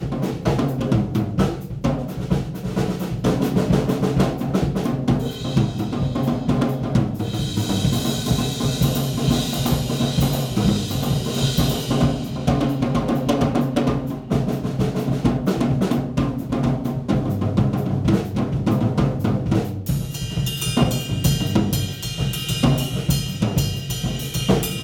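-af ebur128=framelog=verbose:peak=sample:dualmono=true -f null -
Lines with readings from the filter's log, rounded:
Integrated loudness:
  I:         -18.5 LUFS
  Threshold: -28.5 LUFS
Loudness range:
  LRA:         1.3 LU
  Threshold: -38.5 LUFS
  LRA low:   -19.1 LUFS
  LRA high:  -17.8 LUFS
Sample peak:
  Peak:       -8.4 dBFS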